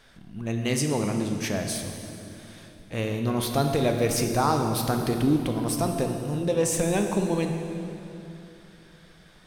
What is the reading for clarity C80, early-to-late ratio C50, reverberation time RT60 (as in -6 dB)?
6.0 dB, 5.0 dB, 2.9 s